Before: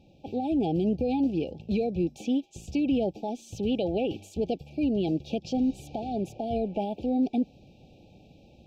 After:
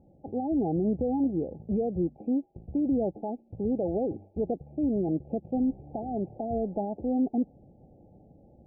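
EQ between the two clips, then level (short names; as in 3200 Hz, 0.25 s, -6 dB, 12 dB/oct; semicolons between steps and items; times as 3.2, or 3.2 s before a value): elliptic low-pass 1300 Hz, stop band 70 dB; air absorption 250 m; 0.0 dB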